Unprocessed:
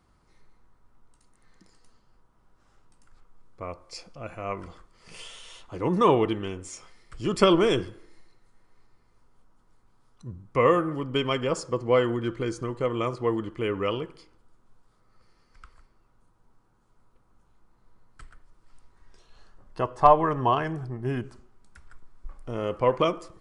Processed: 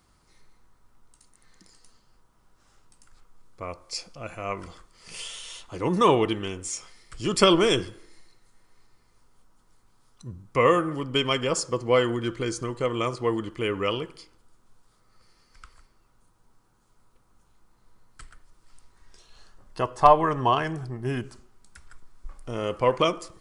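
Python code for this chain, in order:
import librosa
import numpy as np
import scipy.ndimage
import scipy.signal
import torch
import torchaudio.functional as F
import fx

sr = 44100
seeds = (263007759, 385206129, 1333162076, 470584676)

y = fx.high_shelf(x, sr, hz=2900.0, db=10.5)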